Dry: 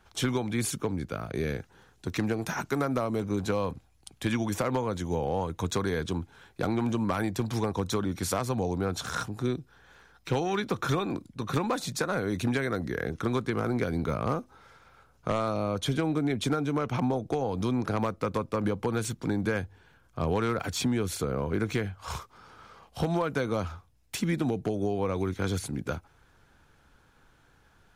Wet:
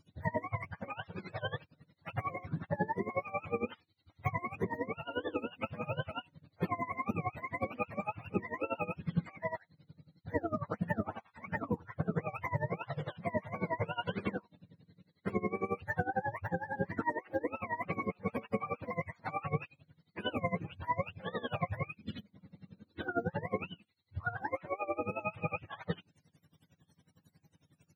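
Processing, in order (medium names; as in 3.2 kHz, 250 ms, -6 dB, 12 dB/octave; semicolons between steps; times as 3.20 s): spectrum inverted on a logarithmic axis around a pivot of 490 Hz; logarithmic tremolo 11 Hz, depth 21 dB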